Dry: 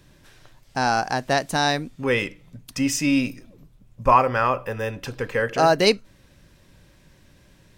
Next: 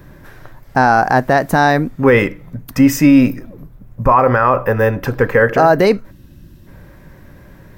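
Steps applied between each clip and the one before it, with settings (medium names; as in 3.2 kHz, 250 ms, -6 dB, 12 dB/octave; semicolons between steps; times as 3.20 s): time-frequency box 6.11–6.67 s, 380–2500 Hz -12 dB; high-order bell 5 kHz -13 dB 2.3 oct; loudness maximiser +15 dB; trim -1 dB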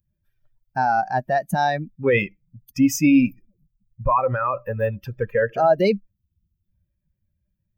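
expander on every frequency bin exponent 2; graphic EQ with 31 bands 200 Hz +5 dB, 630 Hz +4 dB, 1.6 kHz -4 dB, 2.5 kHz +8 dB, 6.3 kHz +8 dB; trim -5.5 dB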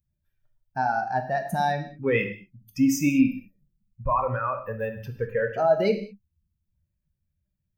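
gated-style reverb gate 230 ms falling, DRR 5 dB; trim -5.5 dB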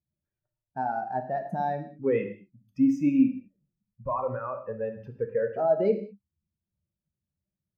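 band-pass filter 370 Hz, Q 0.81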